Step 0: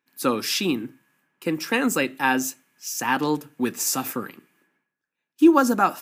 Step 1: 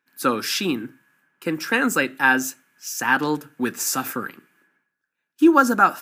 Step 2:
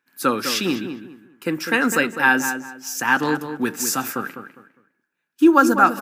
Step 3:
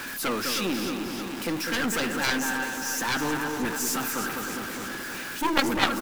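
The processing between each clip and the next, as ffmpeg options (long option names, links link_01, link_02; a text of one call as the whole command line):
ffmpeg -i in.wav -af "equalizer=frequency=1500:width=3.4:gain=9.5" out.wav
ffmpeg -i in.wav -filter_complex "[0:a]asplit=2[link_01][link_02];[link_02]adelay=203,lowpass=frequency=2300:poles=1,volume=-8.5dB,asplit=2[link_03][link_04];[link_04]adelay=203,lowpass=frequency=2300:poles=1,volume=0.28,asplit=2[link_05][link_06];[link_06]adelay=203,lowpass=frequency=2300:poles=1,volume=0.28[link_07];[link_01][link_03][link_05][link_07]amix=inputs=4:normalize=0,volume=1dB" out.wav
ffmpeg -i in.wav -af "aeval=exprs='val(0)+0.5*0.0708*sgn(val(0))':channel_layout=same,aecho=1:1:312|624|936|1248|1560|1872|2184:0.355|0.209|0.124|0.0729|0.043|0.0254|0.015,aeval=exprs='0.944*(cos(1*acos(clip(val(0)/0.944,-1,1)))-cos(1*PI/2))+0.422*(cos(3*acos(clip(val(0)/0.944,-1,1)))-cos(3*PI/2))+0.0473*(cos(7*acos(clip(val(0)/0.944,-1,1)))-cos(7*PI/2))+0.0237*(cos(8*acos(clip(val(0)/0.944,-1,1)))-cos(8*PI/2))':channel_layout=same,volume=-3.5dB" out.wav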